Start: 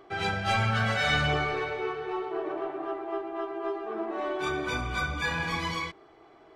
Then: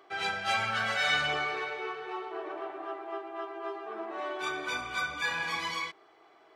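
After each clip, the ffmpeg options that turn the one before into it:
-af "highpass=f=850:p=1"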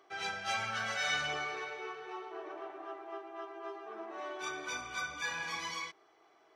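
-af "equalizer=f=5.9k:t=o:w=0.24:g=10.5,volume=-6dB"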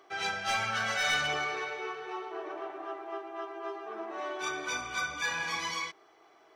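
-af "aeval=exprs='clip(val(0),-1,0.0316)':c=same,volume=5dB"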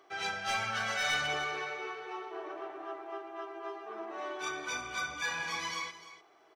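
-af "aecho=1:1:298:0.188,volume=-2.5dB"

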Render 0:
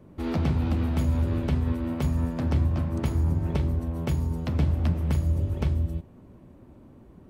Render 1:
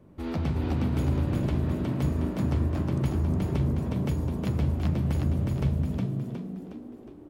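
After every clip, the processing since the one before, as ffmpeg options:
-filter_complex "[0:a]asplit=7[a][b][c][d][e][f][g];[b]adelay=363,afreqshift=54,volume=-3dB[h];[c]adelay=726,afreqshift=108,volume=-9.4dB[i];[d]adelay=1089,afreqshift=162,volume=-15.8dB[j];[e]adelay=1452,afreqshift=216,volume=-22.1dB[k];[f]adelay=1815,afreqshift=270,volume=-28.5dB[l];[g]adelay=2178,afreqshift=324,volume=-34.9dB[m];[a][h][i][j][k][l][m]amix=inputs=7:normalize=0,volume=-3.5dB"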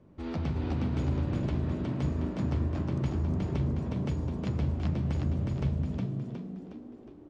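-af "lowpass=f=7k:w=0.5412,lowpass=f=7k:w=1.3066,volume=-3.5dB"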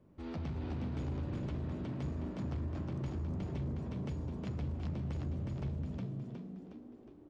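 -af "asoftclip=type=tanh:threshold=-25dB,volume=-6dB"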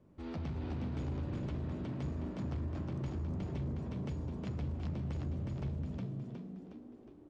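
-af "aresample=22050,aresample=44100"

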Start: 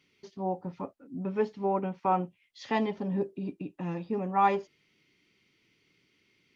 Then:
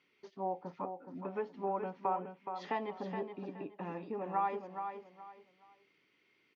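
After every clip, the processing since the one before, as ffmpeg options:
-af "acompressor=threshold=-31dB:ratio=5,bandpass=f=970:t=q:w=0.65:csg=0,aecho=1:1:421|842|1263:0.422|0.11|0.0285,volume=1dB"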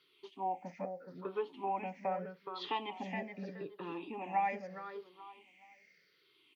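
-af "afftfilt=real='re*pow(10,16/40*sin(2*PI*(0.61*log(max(b,1)*sr/1024/100)/log(2)-(-0.8)*(pts-256)/sr)))':imag='im*pow(10,16/40*sin(2*PI*(0.61*log(max(b,1)*sr/1024/100)/log(2)-(-0.8)*(pts-256)/sr)))':win_size=1024:overlap=0.75,highpass=130,highshelf=f=1.7k:t=q:w=1.5:g=6.5,volume=-3dB"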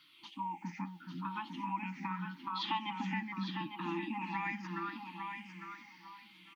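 -af "afftfilt=real='re*(1-between(b*sr/4096,350,800))':imag='im*(1-between(b*sr/4096,350,800))':win_size=4096:overlap=0.75,acompressor=threshold=-45dB:ratio=2,aecho=1:1:854|1708|2562:0.422|0.0801|0.0152,volume=8dB"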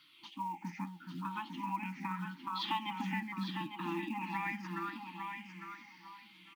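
-af "acrusher=bits=7:mode=log:mix=0:aa=0.000001"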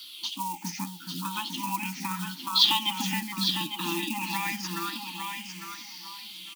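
-af "aexciter=amount=5.6:drive=8.1:freq=3.1k,volume=5.5dB"

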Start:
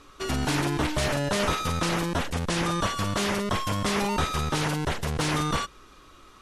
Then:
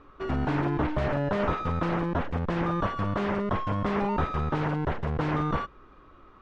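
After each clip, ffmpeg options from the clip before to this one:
-af "lowpass=1.5k"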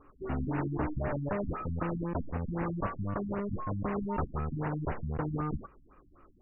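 -af "afftfilt=real='re*lt(b*sr/1024,270*pow(3000/270,0.5+0.5*sin(2*PI*3.9*pts/sr)))':imag='im*lt(b*sr/1024,270*pow(3000/270,0.5+0.5*sin(2*PI*3.9*pts/sr)))':win_size=1024:overlap=0.75,volume=-5dB"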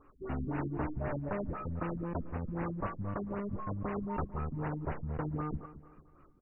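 -af "aecho=1:1:222|444|666|888:0.178|0.0711|0.0285|0.0114,volume=-3dB"

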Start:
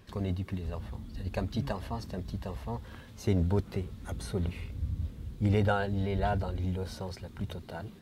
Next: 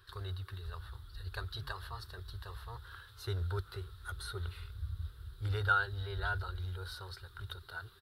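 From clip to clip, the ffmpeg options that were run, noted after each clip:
-af "firequalizer=gain_entry='entry(100,0);entry(220,-30);entry(380,-3);entry(580,-13);entry(1400,14);entry(2200,-7);entry(3800,11);entry(6400,-7);entry(9600,6)':delay=0.05:min_phase=1,volume=-6dB"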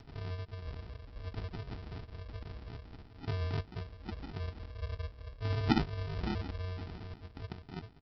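-af "aresample=11025,acrusher=samples=20:mix=1:aa=0.000001,aresample=44100,acompressor=mode=upward:threshold=-49dB:ratio=2.5,volume=1dB"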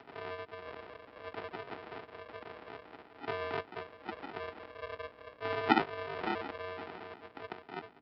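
-filter_complex "[0:a]aeval=exprs='val(0)+0.00126*(sin(2*PI*60*n/s)+sin(2*PI*2*60*n/s)/2+sin(2*PI*3*60*n/s)/3+sin(2*PI*4*60*n/s)/4+sin(2*PI*5*60*n/s)/5)':c=same,highpass=120,acrossover=split=350 3100:gain=0.0794 1 0.0708[a][b][c];[a][b][c]amix=inputs=3:normalize=0,volume=8.5dB"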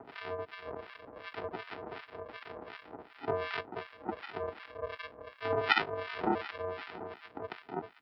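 -filter_complex "[0:a]acrossover=split=1200[a][b];[a]aeval=exprs='val(0)*(1-1/2+1/2*cos(2*PI*2.7*n/s))':c=same[c];[b]aeval=exprs='val(0)*(1-1/2-1/2*cos(2*PI*2.7*n/s))':c=same[d];[c][d]amix=inputs=2:normalize=0,volume=7dB"

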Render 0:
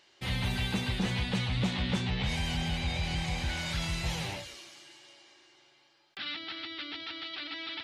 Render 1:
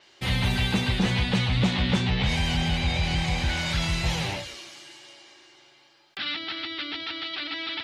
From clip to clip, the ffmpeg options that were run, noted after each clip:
-af "adynamicequalizer=threshold=0.00224:dfrequency=7300:dqfactor=0.7:tfrequency=7300:tqfactor=0.7:attack=5:release=100:ratio=0.375:range=2.5:mode=cutabove:tftype=highshelf,volume=7dB"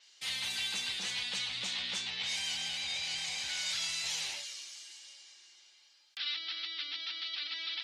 -af "bandpass=f=6.9k:t=q:w=1.1:csg=0,volume=2dB"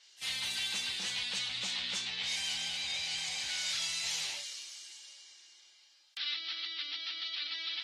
-ar 44100 -c:a libvorbis -b:a 32k

